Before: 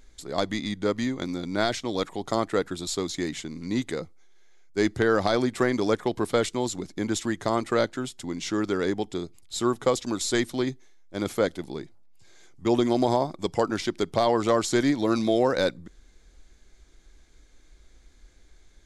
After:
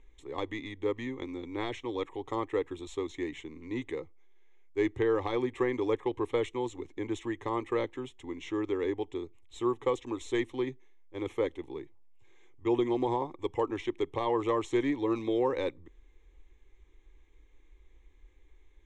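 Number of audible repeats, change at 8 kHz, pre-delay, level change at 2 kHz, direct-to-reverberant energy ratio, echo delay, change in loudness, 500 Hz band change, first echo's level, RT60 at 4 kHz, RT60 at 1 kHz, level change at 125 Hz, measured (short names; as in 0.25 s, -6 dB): none, -19.0 dB, none, -9.0 dB, none, none, -6.5 dB, -5.5 dB, none, none, none, -8.5 dB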